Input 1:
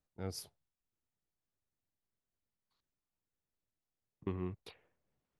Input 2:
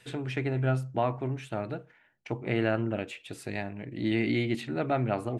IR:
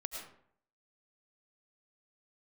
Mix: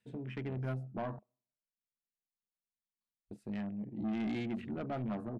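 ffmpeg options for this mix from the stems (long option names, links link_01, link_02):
-filter_complex "[0:a]acompressor=threshold=-47dB:ratio=6,adelay=300,volume=-3dB[link_01];[1:a]volume=-9dB,asplit=3[link_02][link_03][link_04];[link_02]atrim=end=1.19,asetpts=PTS-STARTPTS,afade=type=out:start_time=1.186:duration=0.004:curve=hsin[link_05];[link_03]atrim=start=1.19:end=3.31,asetpts=PTS-STARTPTS,volume=0[link_06];[link_04]atrim=start=3.31,asetpts=PTS-STARTPTS,afade=type=in:duration=0.004:curve=hsin[link_07];[link_05][link_06][link_07]concat=n=3:v=0:a=1,asplit=2[link_08][link_09];[link_09]volume=-22.5dB[link_10];[2:a]atrim=start_sample=2205[link_11];[link_10][link_11]afir=irnorm=-1:irlink=0[link_12];[link_01][link_08][link_12]amix=inputs=3:normalize=0,afwtdn=0.00398,equalizer=frequency=210:width=4.8:gain=14.5,asoftclip=type=tanh:threshold=-31.5dB"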